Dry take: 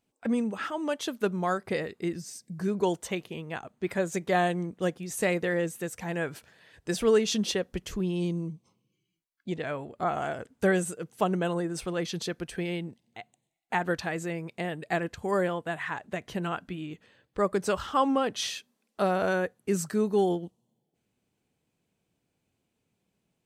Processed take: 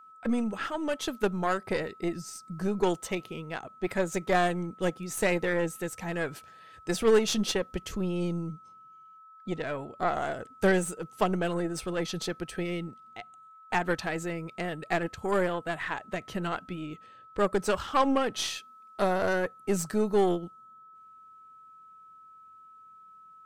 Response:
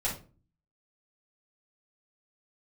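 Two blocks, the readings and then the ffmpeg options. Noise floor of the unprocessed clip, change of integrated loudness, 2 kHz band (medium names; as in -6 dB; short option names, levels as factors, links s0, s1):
-80 dBFS, 0.0 dB, +0.5 dB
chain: -af "aeval=exprs='0.251*(cos(1*acos(clip(val(0)/0.251,-1,1)))-cos(1*PI/2))+0.0224*(cos(6*acos(clip(val(0)/0.251,-1,1)))-cos(6*PI/2))':c=same,aeval=exprs='val(0)+0.00316*sin(2*PI*1300*n/s)':c=same"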